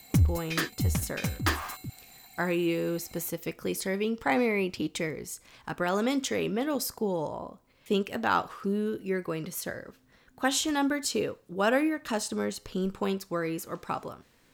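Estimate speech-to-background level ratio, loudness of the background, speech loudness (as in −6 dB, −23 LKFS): −0.5 dB, −30.0 LKFS, −30.5 LKFS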